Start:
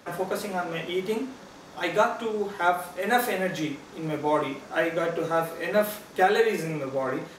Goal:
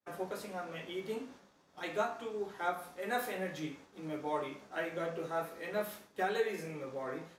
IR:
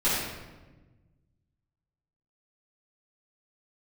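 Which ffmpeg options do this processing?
-af "agate=range=-33dB:threshold=-39dB:ratio=3:detection=peak,flanger=delay=9.7:depth=8.5:regen=58:speed=0.49:shape=sinusoidal,volume=-7.5dB"

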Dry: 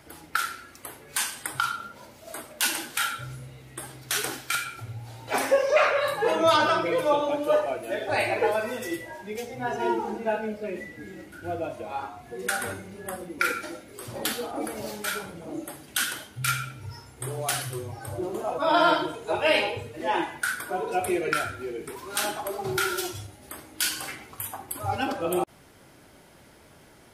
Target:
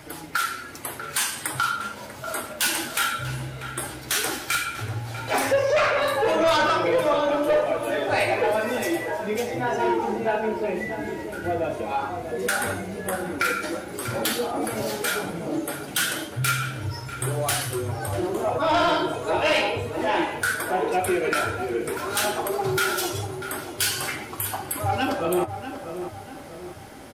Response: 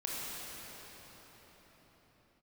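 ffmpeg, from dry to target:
-filter_complex "[0:a]asplit=2[link_01][link_02];[link_02]acompressor=threshold=-33dB:ratio=6,volume=0.5dB[link_03];[link_01][link_03]amix=inputs=2:normalize=0,flanger=delay=6.5:depth=7.5:regen=-44:speed=0.13:shape=triangular,asoftclip=type=tanh:threshold=-21.5dB,asplit=2[link_04][link_05];[link_05]adelay=642,lowpass=frequency=1800:poles=1,volume=-9dB,asplit=2[link_06][link_07];[link_07]adelay=642,lowpass=frequency=1800:poles=1,volume=0.5,asplit=2[link_08][link_09];[link_09]adelay=642,lowpass=frequency=1800:poles=1,volume=0.5,asplit=2[link_10][link_11];[link_11]adelay=642,lowpass=frequency=1800:poles=1,volume=0.5,asplit=2[link_12][link_13];[link_13]adelay=642,lowpass=frequency=1800:poles=1,volume=0.5,asplit=2[link_14][link_15];[link_15]adelay=642,lowpass=frequency=1800:poles=1,volume=0.5[link_16];[link_04][link_06][link_08][link_10][link_12][link_14][link_16]amix=inputs=7:normalize=0,volume=6dB"

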